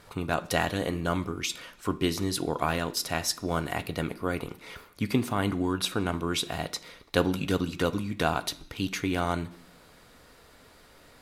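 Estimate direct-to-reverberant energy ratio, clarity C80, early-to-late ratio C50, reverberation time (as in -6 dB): 10.5 dB, 20.5 dB, 17.5 dB, 0.70 s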